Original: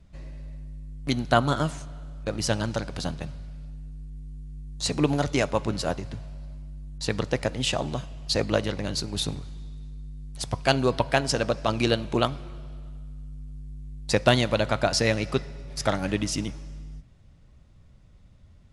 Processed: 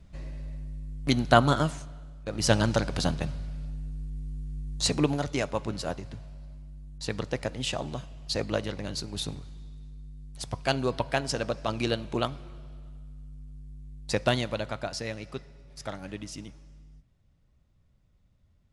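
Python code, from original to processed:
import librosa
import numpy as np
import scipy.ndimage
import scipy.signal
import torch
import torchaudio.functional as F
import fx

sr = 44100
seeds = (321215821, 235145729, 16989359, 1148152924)

y = fx.gain(x, sr, db=fx.line((1.47, 1.5), (2.24, -7.0), (2.51, 3.5), (4.76, 3.5), (5.2, -5.0), (14.24, -5.0), (15.04, -12.0)))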